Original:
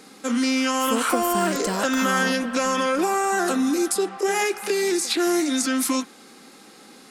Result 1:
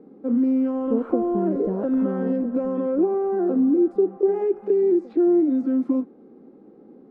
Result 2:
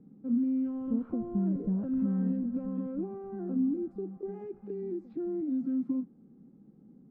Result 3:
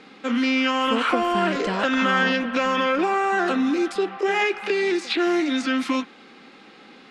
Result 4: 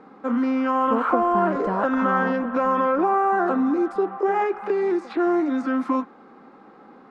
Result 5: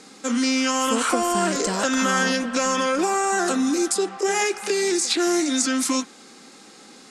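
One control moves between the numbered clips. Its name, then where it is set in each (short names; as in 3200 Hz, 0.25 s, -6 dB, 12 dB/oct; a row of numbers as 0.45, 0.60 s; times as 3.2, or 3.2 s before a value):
synth low-pass, frequency: 410, 160, 2900, 1100, 7500 Hz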